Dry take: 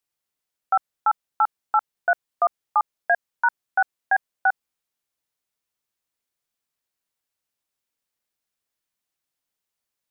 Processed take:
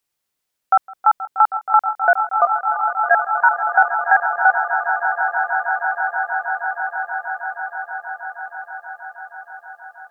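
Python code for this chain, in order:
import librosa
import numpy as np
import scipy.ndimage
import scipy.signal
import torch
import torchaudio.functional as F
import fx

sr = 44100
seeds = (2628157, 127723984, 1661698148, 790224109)

p1 = fx.level_steps(x, sr, step_db=15, at=(2.45, 3.11))
p2 = p1 + fx.echo_swell(p1, sr, ms=159, loudest=8, wet_db=-13.0, dry=0)
y = p2 * 10.0 ** (6.0 / 20.0)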